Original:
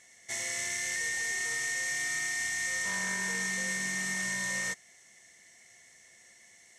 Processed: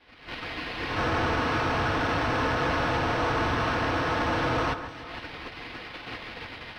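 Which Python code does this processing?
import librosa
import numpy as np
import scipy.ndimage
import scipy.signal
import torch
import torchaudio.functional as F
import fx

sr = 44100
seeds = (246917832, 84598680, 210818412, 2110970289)

y = fx.recorder_agc(x, sr, target_db=-29.0, rise_db_per_s=49.0, max_gain_db=30)
y = fx.spec_gate(y, sr, threshold_db=-20, keep='weak')
y = fx.peak_eq(y, sr, hz=7400.0, db=13.0, octaves=1.3)
y = y + 0.88 * np.pad(y, (int(5.1 * sr / 1000.0), 0))[:len(y)]
y = fx.sample_hold(y, sr, seeds[0], rate_hz=7000.0, jitter_pct=0)
y = 10.0 ** (-25.0 / 20.0) * np.tanh(y / 10.0 ** (-25.0 / 20.0))
y = fx.air_absorb(y, sr, metres=200.0)
y = fx.echo_alternate(y, sr, ms=152, hz=1900.0, feedback_pct=67, wet_db=-9.5)
y = y * librosa.db_to_amplitude(5.0)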